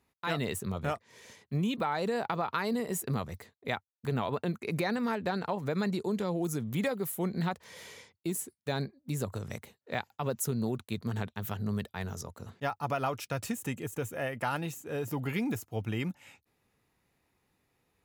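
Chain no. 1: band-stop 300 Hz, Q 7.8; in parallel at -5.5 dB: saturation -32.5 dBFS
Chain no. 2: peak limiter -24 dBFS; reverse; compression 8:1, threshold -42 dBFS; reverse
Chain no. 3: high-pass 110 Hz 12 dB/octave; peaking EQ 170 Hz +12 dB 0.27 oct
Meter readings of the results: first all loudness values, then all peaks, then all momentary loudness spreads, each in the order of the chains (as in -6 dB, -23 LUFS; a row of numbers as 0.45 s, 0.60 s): -32.0 LUFS, -46.5 LUFS, -31.5 LUFS; -16.0 dBFS, -28.0 dBFS, -12.0 dBFS; 7 LU, 5 LU, 10 LU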